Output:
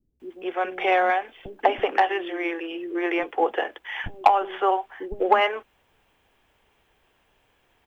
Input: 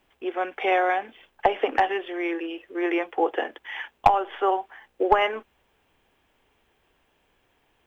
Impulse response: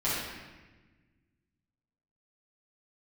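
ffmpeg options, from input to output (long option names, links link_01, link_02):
-filter_complex "[0:a]asplit=2[link_01][link_02];[link_02]asoftclip=type=tanh:threshold=-13dB,volume=-7dB[link_03];[link_01][link_03]amix=inputs=2:normalize=0,acrossover=split=290[link_04][link_05];[link_05]adelay=200[link_06];[link_04][link_06]amix=inputs=2:normalize=0,volume=-1dB"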